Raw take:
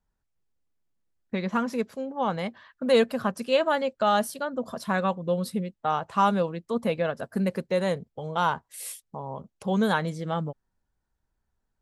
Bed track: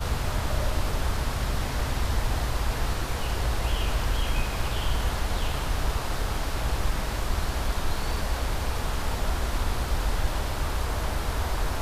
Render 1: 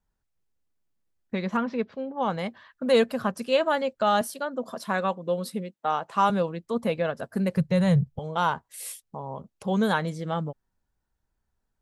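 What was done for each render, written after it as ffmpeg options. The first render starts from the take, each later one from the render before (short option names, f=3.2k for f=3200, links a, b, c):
-filter_complex "[0:a]asplit=3[a][b][c];[a]afade=t=out:st=1.56:d=0.02[d];[b]lowpass=f=4.1k:w=0.5412,lowpass=f=4.1k:w=1.3066,afade=t=in:st=1.56:d=0.02,afade=t=out:st=2.19:d=0.02[e];[c]afade=t=in:st=2.19:d=0.02[f];[d][e][f]amix=inputs=3:normalize=0,asettb=1/sr,asplit=3[g][h][i];[g]atrim=end=4.214[j];[h]atrim=start=4.21:end=6.3,asetpts=PTS-STARTPTS,afade=t=in:d=0.004:c=qsin,afade=t=out:st=2.086:d=0.004:c=qsin,highpass=210[k];[i]atrim=start=6.296[l];[j][k]acrossfade=d=0.004:c1=hsin:c2=qsin[m];[m][l]acrossfade=d=0.004:c1=qsin:c2=hsin,asettb=1/sr,asplit=3[n][o][p];[n]atrim=end=7.574[q];[o]atrim=start=7.57:end=8.19,asetpts=PTS-STARTPTS,afade=t=in:d=0.004:c=qsin,afade=t=out:st=0.616:d=0.004:c=qsin,lowshelf=f=200:t=q:w=3:g=12.5[r];[p]atrim=start=8.186[s];[q][r]acrossfade=d=0.004:c1=hsin:c2=qsin[t];[t][s]acrossfade=d=0.004:c1=qsin:c2=hsin"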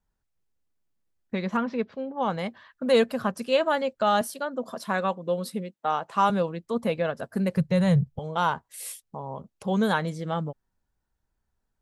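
-af anull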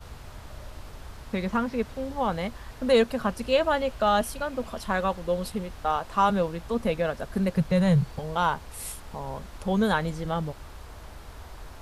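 -filter_complex "[1:a]volume=-15.5dB[a];[0:a][a]amix=inputs=2:normalize=0"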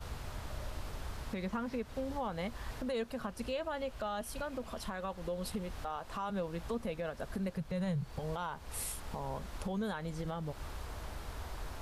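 -af "acompressor=threshold=-32dB:ratio=2,alimiter=level_in=4.5dB:limit=-24dB:level=0:latency=1:release=279,volume=-4.5dB"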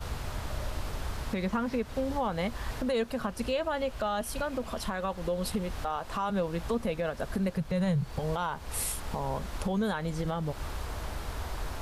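-af "volume=7dB"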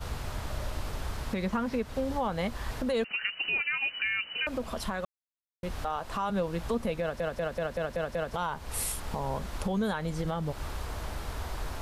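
-filter_complex "[0:a]asettb=1/sr,asplit=3[a][b][c];[a]atrim=end=3.044[d];[b]atrim=start=3.04:end=4.47,asetpts=PTS-STARTPTS,afade=t=in:d=0.004:c=qsin,afade=t=out:st=1.426:d=0.004:c=qsin,lowpass=f=2.6k:t=q:w=0.5098,lowpass=f=2.6k:t=q:w=0.6013,lowpass=f=2.6k:t=q:w=0.9,lowpass=f=2.6k:t=q:w=2.563,afreqshift=-3000[e];[c]atrim=start=4.466[f];[d][e]acrossfade=d=0.004:c1=hsin:c2=qsin[g];[g][f]acrossfade=d=0.004:c1=qsin:c2=hsin,asplit=10[h][i][j][k][l][m][n][o][p][q];[h]atrim=end=5.05,asetpts=PTS-STARTPTS,afade=t=out:st=5.046:d=0.004:c=hsin[r];[i]atrim=start=5.05:end=5.63,asetpts=PTS-STARTPTS,volume=0[s];[j]atrim=start=5.63:end=7.202,asetpts=PTS-STARTPTS,afade=t=in:d=0.004:c=hsin[t];[k]atrim=start=7.008:end=7.202[u];[l]atrim=start=7.008:end=7.202[v];[m]atrim=start=7.008:end=7.202[w];[n]atrim=start=7.008:end=7.202[x];[o]atrim=start=7.008:end=7.202[y];[p]atrim=start=7.008:end=7.202[z];[q]atrim=start=8.338[aa];[r][s][t]concat=n=3:v=0:a=1[ab];[ab][u]acrossfade=d=0.004:c1=hsin:c2=hsin[ac];[ac][v]acrossfade=d=0.004:c1=hsin:c2=hsin[ad];[ad][w]acrossfade=d=0.004:c1=hsin:c2=hsin[ae];[ae][x]acrossfade=d=0.004:c1=hsin:c2=hsin[af];[af][y]acrossfade=d=0.004:c1=hsin:c2=hsin[ag];[ag][z]acrossfade=d=0.004:c1=hsin:c2=hsin[ah];[ah][aa]acrossfade=d=0.004:c1=hsin:c2=hsin"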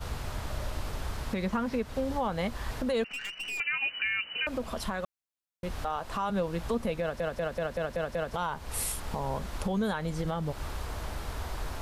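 -filter_complex "[0:a]asettb=1/sr,asplit=3[a][b][c];[a]atrim=end=3.064[d];[b]atrim=start=3.06:end=3.6,asetpts=PTS-STARTPTS,afade=t=in:d=0.004:c=qsin,afade=t=out:st=0.536:d=0.004:c=qsin,aeval=exprs='(tanh(44.7*val(0)+0.3)-tanh(0.3))/44.7':c=same[e];[c]atrim=start=3.596[f];[d][e]acrossfade=d=0.004:c1=hsin:c2=qsin[g];[g][f]acrossfade=d=0.004:c1=qsin:c2=hsin"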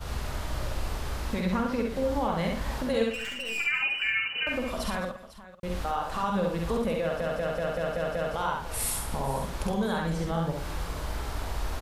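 -filter_complex "[0:a]asplit=2[a][b];[b]adelay=49,volume=-6dB[c];[a][c]amix=inputs=2:normalize=0,asplit=2[d][e];[e]aecho=0:1:66|212|500:0.708|0.158|0.168[f];[d][f]amix=inputs=2:normalize=0"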